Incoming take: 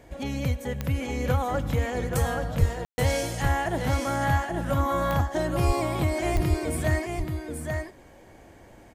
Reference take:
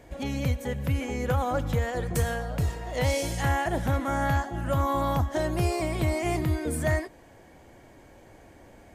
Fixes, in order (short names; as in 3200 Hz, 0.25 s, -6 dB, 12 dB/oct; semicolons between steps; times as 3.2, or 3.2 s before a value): de-click; de-plosive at 2.59/5.66/6.34; room tone fill 2.85–2.98; inverse comb 0.831 s -5 dB